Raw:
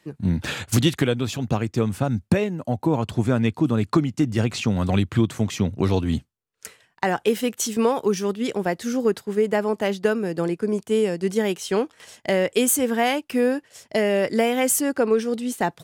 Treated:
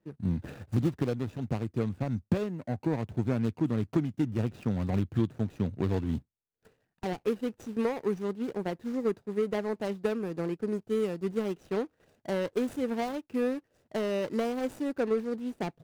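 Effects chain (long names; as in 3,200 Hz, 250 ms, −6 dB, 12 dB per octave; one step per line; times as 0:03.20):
running median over 41 samples
level −7.5 dB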